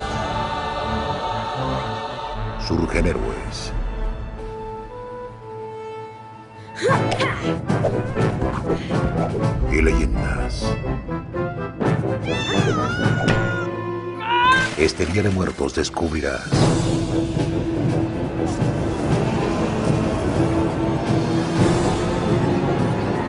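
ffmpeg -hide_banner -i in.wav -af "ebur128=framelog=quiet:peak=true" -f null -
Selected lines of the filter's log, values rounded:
Integrated loudness:
  I:         -21.5 LUFS
  Threshold: -32.0 LUFS
Loudness range:
  LRA:         6.4 LU
  Threshold: -42.0 LUFS
  LRA low:   -26.2 LUFS
  LRA high:  -19.8 LUFS
True peak:
  Peak:       -1.7 dBFS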